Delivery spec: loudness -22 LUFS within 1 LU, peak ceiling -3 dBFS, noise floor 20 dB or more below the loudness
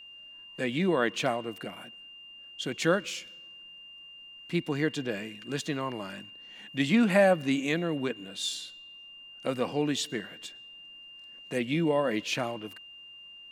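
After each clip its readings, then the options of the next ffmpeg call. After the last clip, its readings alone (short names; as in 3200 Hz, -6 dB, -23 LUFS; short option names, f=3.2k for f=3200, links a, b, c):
steady tone 2800 Hz; tone level -46 dBFS; loudness -29.5 LUFS; peak -8.5 dBFS; loudness target -22.0 LUFS
-> -af "bandreject=f=2.8k:w=30"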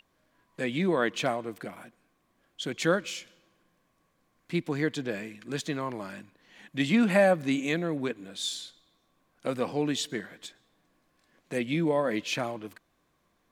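steady tone none; loudness -29.5 LUFS; peak -8.5 dBFS; loudness target -22.0 LUFS
-> -af "volume=7.5dB,alimiter=limit=-3dB:level=0:latency=1"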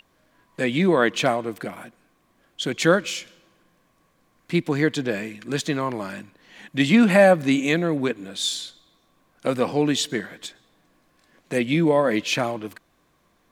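loudness -22.0 LUFS; peak -3.0 dBFS; noise floor -65 dBFS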